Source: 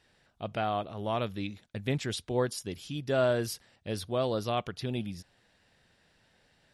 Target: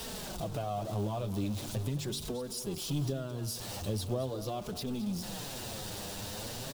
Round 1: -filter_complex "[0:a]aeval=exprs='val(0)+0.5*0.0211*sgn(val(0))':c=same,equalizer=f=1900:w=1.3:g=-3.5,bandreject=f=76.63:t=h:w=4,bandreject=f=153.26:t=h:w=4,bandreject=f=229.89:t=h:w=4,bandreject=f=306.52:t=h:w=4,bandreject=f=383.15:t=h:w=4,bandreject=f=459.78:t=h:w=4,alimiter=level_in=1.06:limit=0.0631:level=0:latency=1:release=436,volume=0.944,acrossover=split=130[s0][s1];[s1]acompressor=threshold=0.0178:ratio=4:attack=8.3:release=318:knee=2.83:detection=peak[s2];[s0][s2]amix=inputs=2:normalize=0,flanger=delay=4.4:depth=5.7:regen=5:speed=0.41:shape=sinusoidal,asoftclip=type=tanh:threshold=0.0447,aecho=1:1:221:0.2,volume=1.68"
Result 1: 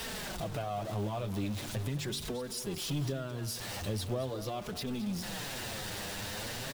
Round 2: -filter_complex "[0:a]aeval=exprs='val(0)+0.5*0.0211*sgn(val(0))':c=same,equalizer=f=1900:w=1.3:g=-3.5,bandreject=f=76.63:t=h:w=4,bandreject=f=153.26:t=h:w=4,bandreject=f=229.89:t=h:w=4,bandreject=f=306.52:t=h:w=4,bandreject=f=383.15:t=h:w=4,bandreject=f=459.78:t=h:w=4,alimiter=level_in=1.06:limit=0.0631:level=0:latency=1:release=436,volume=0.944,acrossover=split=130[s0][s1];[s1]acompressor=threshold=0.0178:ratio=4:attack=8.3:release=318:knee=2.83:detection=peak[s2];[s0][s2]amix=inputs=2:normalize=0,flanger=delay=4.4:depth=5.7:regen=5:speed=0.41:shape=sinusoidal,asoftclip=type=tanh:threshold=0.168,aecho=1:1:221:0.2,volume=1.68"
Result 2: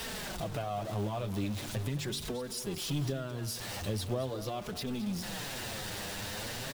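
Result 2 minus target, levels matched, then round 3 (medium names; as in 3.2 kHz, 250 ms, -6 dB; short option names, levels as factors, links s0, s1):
2 kHz band +6.5 dB
-filter_complex "[0:a]aeval=exprs='val(0)+0.5*0.0211*sgn(val(0))':c=same,equalizer=f=1900:w=1.3:g=-13,bandreject=f=76.63:t=h:w=4,bandreject=f=153.26:t=h:w=4,bandreject=f=229.89:t=h:w=4,bandreject=f=306.52:t=h:w=4,bandreject=f=383.15:t=h:w=4,bandreject=f=459.78:t=h:w=4,alimiter=level_in=1.06:limit=0.0631:level=0:latency=1:release=436,volume=0.944,acrossover=split=130[s0][s1];[s1]acompressor=threshold=0.0178:ratio=4:attack=8.3:release=318:knee=2.83:detection=peak[s2];[s0][s2]amix=inputs=2:normalize=0,flanger=delay=4.4:depth=5.7:regen=5:speed=0.41:shape=sinusoidal,asoftclip=type=tanh:threshold=0.168,aecho=1:1:221:0.2,volume=1.68"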